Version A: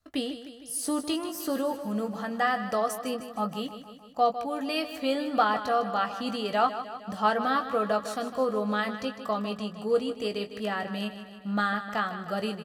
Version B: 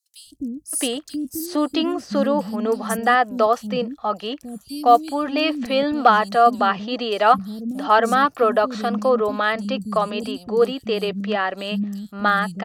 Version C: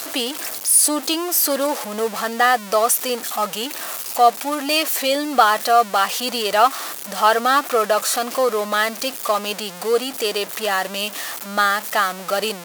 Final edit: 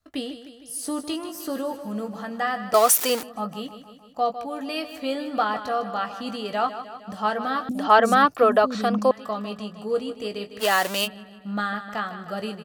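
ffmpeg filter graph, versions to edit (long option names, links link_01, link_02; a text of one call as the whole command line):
ffmpeg -i take0.wav -i take1.wav -i take2.wav -filter_complex "[2:a]asplit=2[link_01][link_02];[0:a]asplit=4[link_03][link_04][link_05][link_06];[link_03]atrim=end=2.742[link_07];[link_01]atrim=start=2.738:end=3.232[link_08];[link_04]atrim=start=3.228:end=7.692[link_09];[1:a]atrim=start=7.688:end=9.112[link_10];[link_05]atrim=start=9.108:end=10.63[link_11];[link_02]atrim=start=10.59:end=11.08[link_12];[link_06]atrim=start=11.04[link_13];[link_07][link_08]acrossfade=duration=0.004:curve1=hsin:curve2=hsin[link_14];[link_14][link_09]acrossfade=duration=0.004:curve1=hsin:curve2=hsin[link_15];[link_15][link_10]acrossfade=duration=0.004:curve1=hsin:curve2=hsin[link_16];[link_16][link_11]acrossfade=duration=0.004:curve1=hsin:curve2=hsin[link_17];[link_17][link_12]acrossfade=duration=0.04:curve1=tri:curve2=tri[link_18];[link_18][link_13]acrossfade=duration=0.04:curve1=tri:curve2=tri" out.wav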